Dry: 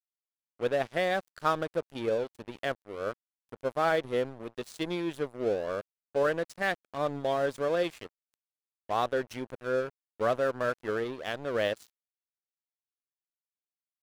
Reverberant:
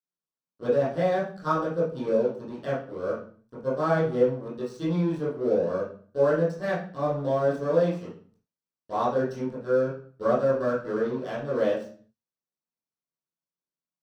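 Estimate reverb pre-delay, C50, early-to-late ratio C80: 14 ms, 4.0 dB, 10.5 dB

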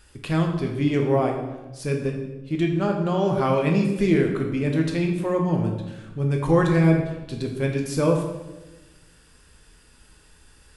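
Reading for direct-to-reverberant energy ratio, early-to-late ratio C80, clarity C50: 1.5 dB, 7.5 dB, 5.0 dB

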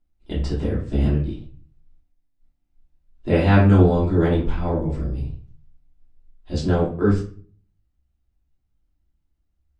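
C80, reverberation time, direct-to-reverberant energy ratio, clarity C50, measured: 11.0 dB, 0.45 s, −9.0 dB, 5.5 dB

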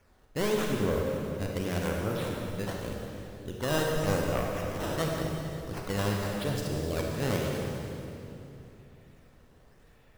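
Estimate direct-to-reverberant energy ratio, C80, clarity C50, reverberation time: −1.0 dB, 1.0 dB, 0.0 dB, 3.0 s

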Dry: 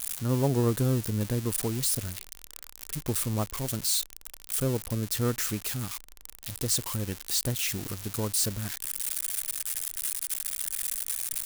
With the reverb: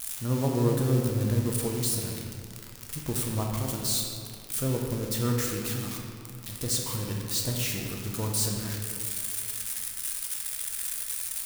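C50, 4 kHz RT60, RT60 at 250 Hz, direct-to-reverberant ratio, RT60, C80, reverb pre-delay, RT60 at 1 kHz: 2.0 dB, 1.4 s, 2.6 s, 0.0 dB, 2.4 s, 3.5 dB, 6 ms, 2.3 s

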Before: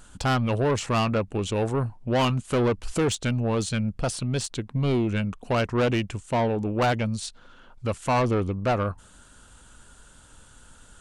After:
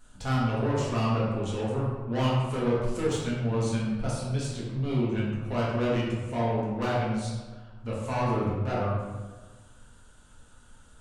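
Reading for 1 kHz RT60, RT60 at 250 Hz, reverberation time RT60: 1.4 s, 1.7 s, 1.4 s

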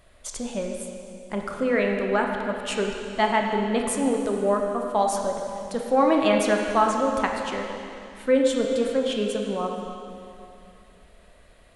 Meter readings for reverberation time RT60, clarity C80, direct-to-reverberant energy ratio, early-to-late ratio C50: 2.7 s, 3.5 dB, 1.0 dB, 2.5 dB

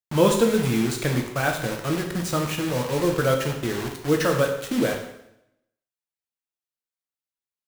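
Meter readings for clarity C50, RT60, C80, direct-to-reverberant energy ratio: 6.0 dB, 0.80 s, 8.5 dB, 2.0 dB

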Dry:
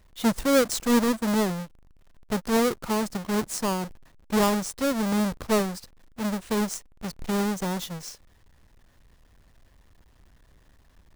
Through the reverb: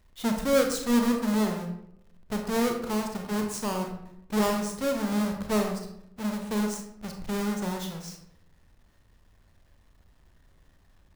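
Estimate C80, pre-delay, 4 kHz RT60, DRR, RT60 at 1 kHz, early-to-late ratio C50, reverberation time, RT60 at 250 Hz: 9.0 dB, 28 ms, 0.45 s, 3.0 dB, 0.70 s, 5.5 dB, 0.75 s, 0.95 s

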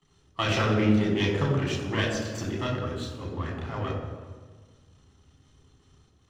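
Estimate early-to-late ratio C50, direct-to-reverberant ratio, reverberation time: 3.0 dB, −2.5 dB, 1.5 s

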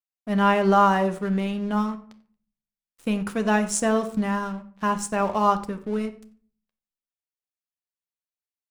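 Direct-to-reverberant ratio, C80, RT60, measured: 8.0 dB, 16.5 dB, non-exponential decay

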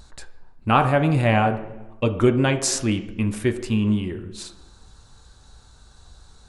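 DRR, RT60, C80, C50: 6.0 dB, 1.1 s, 13.5 dB, 11.0 dB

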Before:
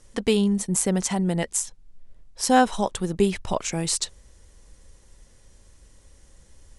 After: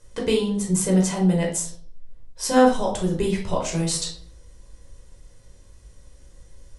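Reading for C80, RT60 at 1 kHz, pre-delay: 13.0 dB, 0.45 s, 11 ms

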